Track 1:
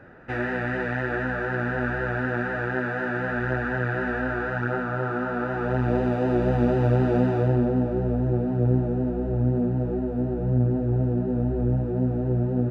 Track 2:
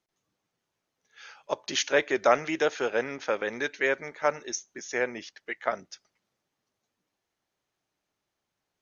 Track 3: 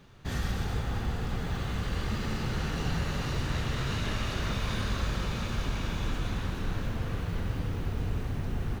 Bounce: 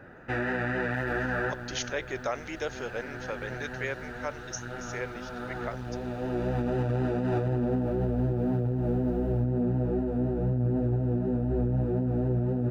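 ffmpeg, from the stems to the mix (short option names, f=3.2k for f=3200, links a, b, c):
-filter_complex "[0:a]volume=-1dB[a];[1:a]volume=-8.5dB,asplit=2[b][c];[2:a]equalizer=f=6.7k:w=1.6:g=-3.5,adelay=650,volume=-17.5dB[d];[c]apad=whole_len=560389[e];[a][e]sidechaincompress=threshold=-41dB:ratio=8:attack=5.2:release=1250[f];[f][b][d]amix=inputs=3:normalize=0,highshelf=f=5k:g=5.5,alimiter=limit=-20dB:level=0:latency=1:release=39"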